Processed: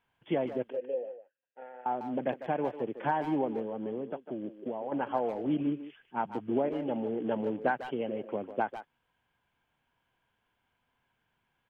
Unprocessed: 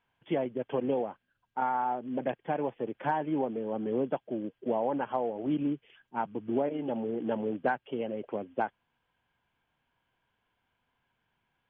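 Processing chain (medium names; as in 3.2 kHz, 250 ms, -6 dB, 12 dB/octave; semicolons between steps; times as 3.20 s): 0.70–1.86 s: vowel filter e; 3.61–4.92 s: compression 6:1, threshold -33 dBFS, peak gain reduction 8.5 dB; speakerphone echo 150 ms, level -10 dB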